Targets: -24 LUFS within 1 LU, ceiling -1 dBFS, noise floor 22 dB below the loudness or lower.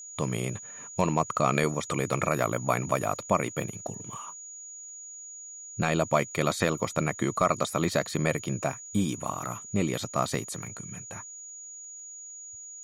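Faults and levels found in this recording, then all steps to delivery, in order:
ticks 37/s; steady tone 6800 Hz; tone level -41 dBFS; loudness -29.0 LUFS; peak -10.0 dBFS; loudness target -24.0 LUFS
-> de-click; notch 6800 Hz, Q 30; gain +5 dB

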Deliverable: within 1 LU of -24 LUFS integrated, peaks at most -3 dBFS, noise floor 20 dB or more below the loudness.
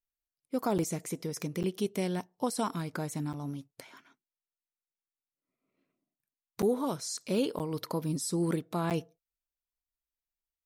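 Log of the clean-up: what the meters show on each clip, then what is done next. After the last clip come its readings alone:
dropouts 6; longest dropout 8.3 ms; loudness -33.0 LUFS; peak -17.5 dBFS; loudness target -24.0 LUFS
-> interpolate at 0.78/1.63/3.33/6.62/7.59/8.9, 8.3 ms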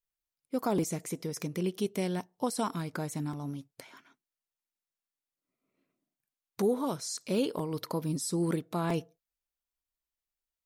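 dropouts 0; loudness -33.0 LUFS; peak -17.5 dBFS; loudness target -24.0 LUFS
-> gain +9 dB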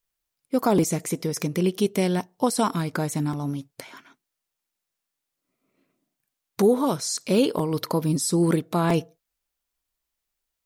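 loudness -24.0 LUFS; peak -8.5 dBFS; noise floor -84 dBFS

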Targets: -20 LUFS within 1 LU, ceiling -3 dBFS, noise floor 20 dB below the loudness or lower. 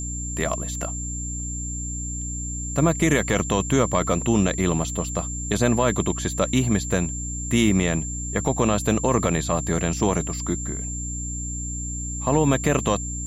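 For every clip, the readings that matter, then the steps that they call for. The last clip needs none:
hum 60 Hz; harmonics up to 300 Hz; hum level -29 dBFS; steady tone 7300 Hz; tone level -31 dBFS; loudness -23.5 LUFS; peak -7.5 dBFS; loudness target -20.0 LUFS
-> de-hum 60 Hz, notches 5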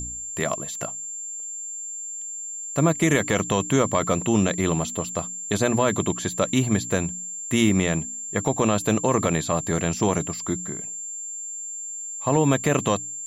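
hum none; steady tone 7300 Hz; tone level -31 dBFS
-> notch 7300 Hz, Q 30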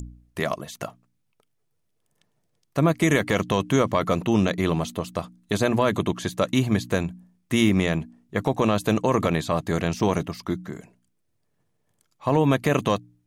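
steady tone none; loudness -24.0 LUFS; peak -8.0 dBFS; loudness target -20.0 LUFS
-> gain +4 dB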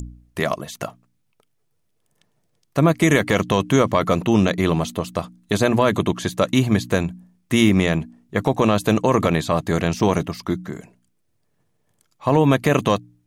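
loudness -20.0 LUFS; peak -4.0 dBFS; noise floor -68 dBFS

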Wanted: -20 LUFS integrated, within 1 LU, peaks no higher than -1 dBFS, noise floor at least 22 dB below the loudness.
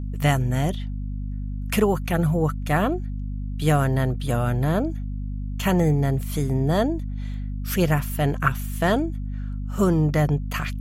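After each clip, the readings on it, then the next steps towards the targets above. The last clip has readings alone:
hum 50 Hz; harmonics up to 250 Hz; hum level -27 dBFS; loudness -24.0 LUFS; peak -5.5 dBFS; loudness target -20.0 LUFS
-> de-hum 50 Hz, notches 5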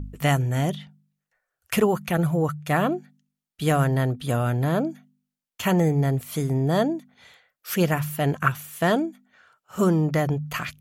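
hum none; loudness -24.0 LUFS; peak -6.0 dBFS; loudness target -20.0 LUFS
-> gain +4 dB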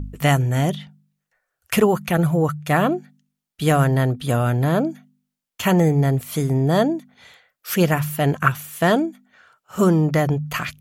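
loudness -20.0 LUFS; peak -2.0 dBFS; noise floor -83 dBFS

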